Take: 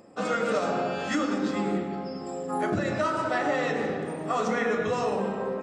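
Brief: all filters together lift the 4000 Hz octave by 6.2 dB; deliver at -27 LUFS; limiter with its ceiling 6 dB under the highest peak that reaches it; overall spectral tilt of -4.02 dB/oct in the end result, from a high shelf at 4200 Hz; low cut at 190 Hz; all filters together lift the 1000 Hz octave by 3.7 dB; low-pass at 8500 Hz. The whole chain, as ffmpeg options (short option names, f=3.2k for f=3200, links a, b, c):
-af "highpass=190,lowpass=8.5k,equalizer=f=1k:t=o:g=4.5,equalizer=f=4k:t=o:g=4,highshelf=f=4.2k:g=7,volume=0.5dB,alimiter=limit=-17dB:level=0:latency=1"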